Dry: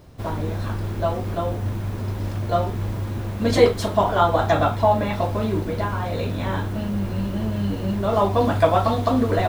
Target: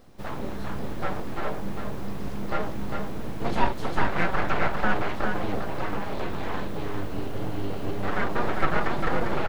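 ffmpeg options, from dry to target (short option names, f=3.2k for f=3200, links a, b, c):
-filter_complex "[0:a]aeval=exprs='abs(val(0))':c=same,aecho=1:1:401:0.562,acrossover=split=2900[a][b];[b]acompressor=threshold=-44dB:ratio=4:attack=1:release=60[c];[a][c]amix=inputs=2:normalize=0,volume=-4dB"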